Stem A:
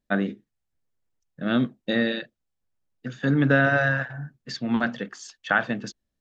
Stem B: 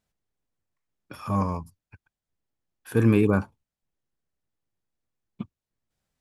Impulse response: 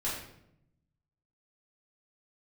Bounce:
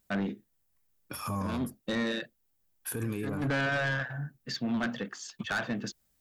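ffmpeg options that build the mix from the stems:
-filter_complex "[0:a]asoftclip=type=tanh:threshold=0.075,volume=0.891[s0];[1:a]aemphasis=mode=production:type=50fm,acompressor=threshold=0.0891:ratio=6,volume=1.06[s1];[s0][s1]amix=inputs=2:normalize=0,alimiter=level_in=1.19:limit=0.0631:level=0:latency=1:release=75,volume=0.841"

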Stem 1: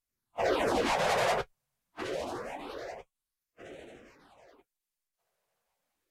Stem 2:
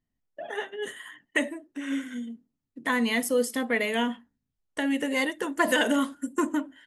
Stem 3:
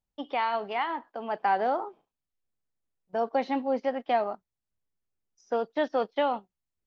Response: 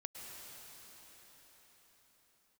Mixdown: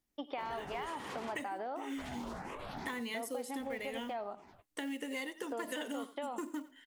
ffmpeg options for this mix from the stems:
-filter_complex "[0:a]acompressor=threshold=0.0112:ratio=2.5,alimiter=level_in=2.82:limit=0.0631:level=0:latency=1:release=24,volume=0.355,aeval=exprs='val(0)*sin(2*PI*300*n/s)':c=same,volume=1.26[s0];[1:a]highpass=240,acrusher=bits=6:mode=log:mix=0:aa=0.000001,equalizer=f=630:t=o:w=0.33:g=-7,equalizer=f=1000:t=o:w=0.33:g=-3,equalizer=f=1600:t=o:w=0.33:g=-6,volume=0.668,asplit=2[s1][s2];[s2]volume=0.112[s3];[2:a]alimiter=limit=0.0944:level=0:latency=1,volume=0.794,asplit=2[s4][s5];[s5]volume=0.0944[s6];[s3][s6]amix=inputs=2:normalize=0,aecho=0:1:89:1[s7];[s0][s1][s4][s7]amix=inputs=4:normalize=0,acompressor=threshold=0.0141:ratio=6"

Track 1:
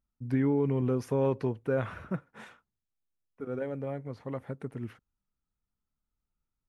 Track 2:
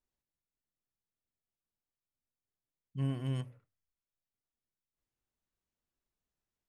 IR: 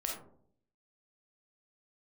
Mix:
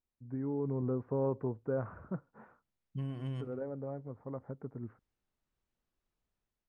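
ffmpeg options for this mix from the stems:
-filter_complex "[0:a]lowpass=f=1300:w=0.5412,lowpass=f=1300:w=1.3066,volume=0.237[s0];[1:a]aemphasis=mode=reproduction:type=50fm,acompressor=threshold=0.01:ratio=6,volume=0.668[s1];[s0][s1]amix=inputs=2:normalize=0,dynaudnorm=f=230:g=5:m=2.37"

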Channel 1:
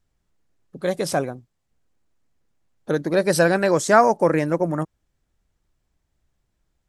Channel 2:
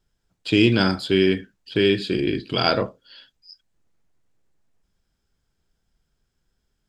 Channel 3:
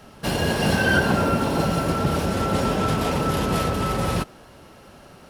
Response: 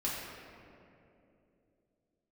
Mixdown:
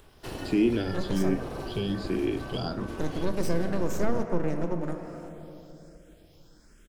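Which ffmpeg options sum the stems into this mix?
-filter_complex "[0:a]equalizer=f=6400:w=1.3:g=11,aeval=exprs='max(val(0),0)':c=same,adynamicequalizer=threshold=0.0158:dfrequency=2600:dqfactor=0.7:tfrequency=2600:tqfactor=0.7:attack=5:release=100:ratio=0.375:range=2.5:mode=cutabove:tftype=highshelf,adelay=100,volume=0.422,asplit=2[s0][s1];[s1]volume=0.398[s2];[1:a]acompressor=mode=upward:threshold=0.0316:ratio=2.5,asplit=2[s3][s4];[s4]afreqshift=1.3[s5];[s3][s5]amix=inputs=2:normalize=1,volume=0.668[s6];[2:a]aeval=exprs='val(0)*sin(2*PI*190*n/s)':c=same,volume=0.316[s7];[3:a]atrim=start_sample=2205[s8];[s2][s8]afir=irnorm=-1:irlink=0[s9];[s0][s6][s7][s9]amix=inputs=4:normalize=0,acrossover=split=480[s10][s11];[s11]acompressor=threshold=0.01:ratio=3[s12];[s10][s12]amix=inputs=2:normalize=0"

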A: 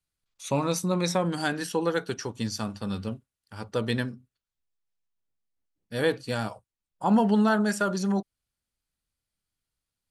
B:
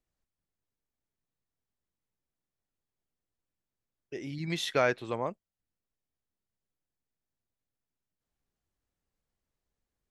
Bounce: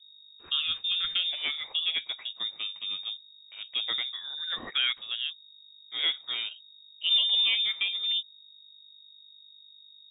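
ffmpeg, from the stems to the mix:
-filter_complex "[0:a]aeval=exprs='val(0)+0.00355*(sin(2*PI*50*n/s)+sin(2*PI*2*50*n/s)/2+sin(2*PI*3*50*n/s)/3+sin(2*PI*4*50*n/s)/4+sin(2*PI*5*50*n/s)/5)':c=same,volume=0.668[s0];[1:a]agate=range=0.0224:threshold=0.0112:ratio=3:detection=peak,asoftclip=type=tanh:threshold=0.15,volume=1[s1];[s0][s1]amix=inputs=2:normalize=0,lowpass=f=3200:t=q:w=0.5098,lowpass=f=3200:t=q:w=0.6013,lowpass=f=3200:t=q:w=0.9,lowpass=f=3200:t=q:w=2.563,afreqshift=-3800"

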